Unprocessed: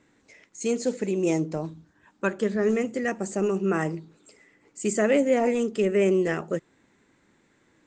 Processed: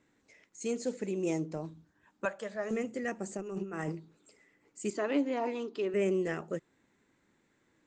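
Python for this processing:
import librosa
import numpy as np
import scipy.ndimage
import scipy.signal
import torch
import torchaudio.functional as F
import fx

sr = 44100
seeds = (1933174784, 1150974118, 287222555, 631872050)

y = fx.low_shelf_res(x, sr, hz=470.0, db=-9.5, q=3.0, at=(2.25, 2.71))
y = fx.over_compress(y, sr, threshold_db=-28.0, ratio=-0.5, at=(3.36, 3.91), fade=0.02)
y = fx.cabinet(y, sr, low_hz=200.0, low_slope=12, high_hz=5200.0, hz=(210.0, 300.0, 530.0, 1000.0, 2000.0, 4100.0), db=(-10, 8, -7, 9, -5, 8), at=(4.9, 5.94))
y = F.gain(torch.from_numpy(y), -8.0).numpy()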